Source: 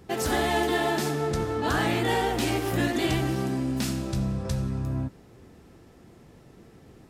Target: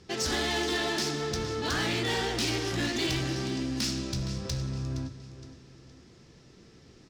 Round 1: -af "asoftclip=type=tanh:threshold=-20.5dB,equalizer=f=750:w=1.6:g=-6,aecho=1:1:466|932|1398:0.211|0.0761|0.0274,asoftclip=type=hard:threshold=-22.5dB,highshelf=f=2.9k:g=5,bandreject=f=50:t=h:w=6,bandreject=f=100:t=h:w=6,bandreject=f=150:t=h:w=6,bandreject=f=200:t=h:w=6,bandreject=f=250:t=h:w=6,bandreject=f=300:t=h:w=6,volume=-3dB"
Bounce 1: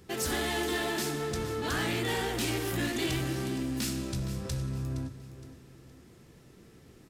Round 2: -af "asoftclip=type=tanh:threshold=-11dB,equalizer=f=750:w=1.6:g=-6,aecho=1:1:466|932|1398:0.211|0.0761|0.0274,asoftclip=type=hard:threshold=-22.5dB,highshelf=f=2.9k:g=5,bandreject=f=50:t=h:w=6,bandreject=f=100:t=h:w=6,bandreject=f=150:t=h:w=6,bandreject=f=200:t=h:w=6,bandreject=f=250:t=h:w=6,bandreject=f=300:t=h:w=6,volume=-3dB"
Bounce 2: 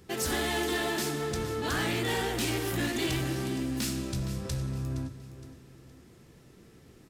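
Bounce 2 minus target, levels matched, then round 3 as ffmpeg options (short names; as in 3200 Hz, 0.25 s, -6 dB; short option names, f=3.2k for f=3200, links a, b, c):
4000 Hz band -3.0 dB
-af "asoftclip=type=tanh:threshold=-11dB,lowpass=f=5.4k:t=q:w=2.3,equalizer=f=750:w=1.6:g=-6,aecho=1:1:466|932|1398:0.211|0.0761|0.0274,asoftclip=type=hard:threshold=-22.5dB,highshelf=f=2.9k:g=5,bandreject=f=50:t=h:w=6,bandreject=f=100:t=h:w=6,bandreject=f=150:t=h:w=6,bandreject=f=200:t=h:w=6,bandreject=f=250:t=h:w=6,bandreject=f=300:t=h:w=6,volume=-3dB"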